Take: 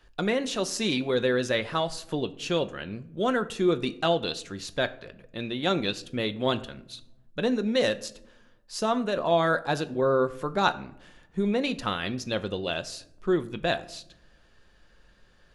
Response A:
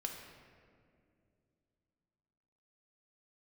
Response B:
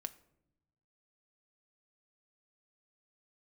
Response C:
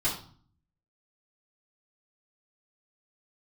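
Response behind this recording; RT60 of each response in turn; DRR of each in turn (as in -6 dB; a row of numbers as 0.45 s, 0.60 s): B; 2.4 s, 0.80 s, 0.45 s; 1.5 dB, 9.5 dB, -11.5 dB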